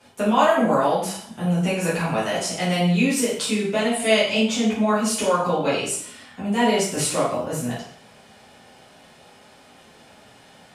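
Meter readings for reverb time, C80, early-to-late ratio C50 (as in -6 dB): 0.60 s, 7.0 dB, 2.5 dB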